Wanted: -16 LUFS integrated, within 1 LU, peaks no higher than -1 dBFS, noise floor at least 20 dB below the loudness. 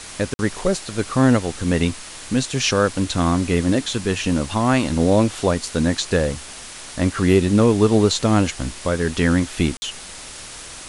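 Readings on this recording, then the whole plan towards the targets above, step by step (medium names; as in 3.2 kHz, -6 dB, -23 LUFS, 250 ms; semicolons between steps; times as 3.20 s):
dropouts 2; longest dropout 50 ms; noise floor -37 dBFS; noise floor target -40 dBFS; loudness -20.0 LUFS; peak level -3.0 dBFS; loudness target -16.0 LUFS
-> interpolate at 0.34/9.77 s, 50 ms; noise reduction 6 dB, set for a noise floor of -37 dBFS; trim +4 dB; peak limiter -1 dBFS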